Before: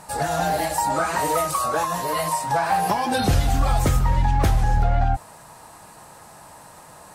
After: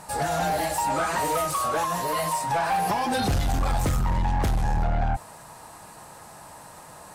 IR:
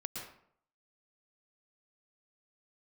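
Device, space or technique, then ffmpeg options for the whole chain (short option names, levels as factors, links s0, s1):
saturation between pre-emphasis and de-emphasis: -af "highshelf=f=8900:g=11,asoftclip=type=tanh:threshold=0.112,highshelf=f=8900:g=-11"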